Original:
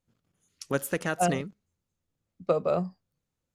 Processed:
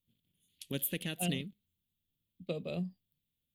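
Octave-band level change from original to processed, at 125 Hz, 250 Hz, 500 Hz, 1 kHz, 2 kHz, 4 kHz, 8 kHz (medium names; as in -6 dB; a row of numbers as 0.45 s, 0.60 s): -4.5 dB, -5.5 dB, -14.0 dB, -19.0 dB, -9.5 dB, +2.5 dB, -4.0 dB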